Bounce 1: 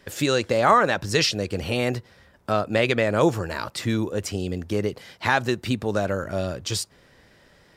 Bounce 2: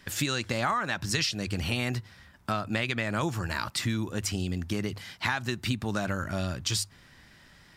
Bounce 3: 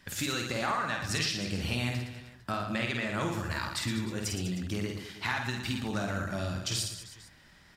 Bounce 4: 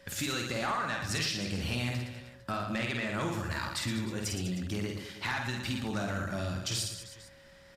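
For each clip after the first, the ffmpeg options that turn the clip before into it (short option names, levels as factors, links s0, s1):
-af "equalizer=f=490:w=1.4:g=-13.5,bandreject=f=50:t=h:w=6,bandreject=f=100:t=h:w=6,acompressor=threshold=0.0447:ratio=6,volume=1.26"
-filter_complex "[0:a]flanger=delay=1.1:depth=4.4:regen=-78:speed=1.1:shape=sinusoidal,asplit=2[s0][s1];[s1]aecho=0:1:50|115|199.5|309.4|452.2:0.631|0.398|0.251|0.158|0.1[s2];[s0][s2]amix=inputs=2:normalize=0"
-af "asoftclip=type=tanh:threshold=0.0708,aeval=exprs='val(0)+0.00141*sin(2*PI*550*n/s)':c=same,aresample=32000,aresample=44100"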